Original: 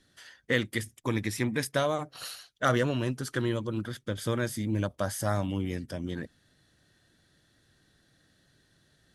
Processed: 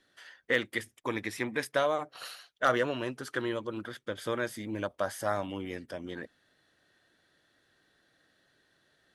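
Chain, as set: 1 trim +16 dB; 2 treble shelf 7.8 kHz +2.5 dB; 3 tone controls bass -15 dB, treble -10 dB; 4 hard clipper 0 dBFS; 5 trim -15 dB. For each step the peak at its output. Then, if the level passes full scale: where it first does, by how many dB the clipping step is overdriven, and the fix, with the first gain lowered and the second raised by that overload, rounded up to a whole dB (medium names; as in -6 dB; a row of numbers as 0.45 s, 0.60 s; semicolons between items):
+5.0 dBFS, +5.0 dBFS, +3.5 dBFS, 0.0 dBFS, -15.0 dBFS; step 1, 3.5 dB; step 1 +12 dB, step 5 -11 dB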